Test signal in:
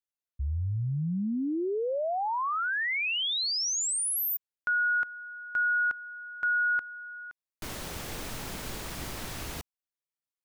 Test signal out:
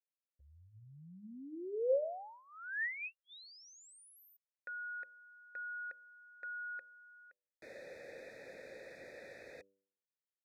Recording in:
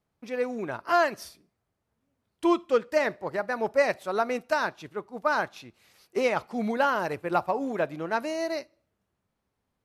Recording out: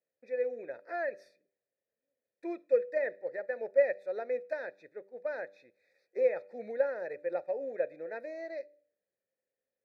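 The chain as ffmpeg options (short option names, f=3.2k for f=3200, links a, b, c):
-filter_complex "[0:a]asplit=3[a][b][c];[a]bandpass=f=530:t=q:w=8,volume=0dB[d];[b]bandpass=f=1.84k:t=q:w=8,volume=-6dB[e];[c]bandpass=f=2.48k:t=q:w=8,volume=-9dB[f];[d][e][f]amix=inputs=3:normalize=0,acrossover=split=2700[g][h];[h]acompressor=threshold=-60dB:ratio=4:attack=1:release=60[i];[g][i]amix=inputs=2:normalize=0,asuperstop=centerf=3000:order=12:qfactor=2.9,bandreject=f=98.11:t=h:w=4,bandreject=f=196.22:t=h:w=4,bandreject=f=294.33:t=h:w=4,bandreject=f=392.44:t=h:w=4,bandreject=f=490.55:t=h:w=4,bandreject=f=588.66:t=h:w=4,volume=1.5dB"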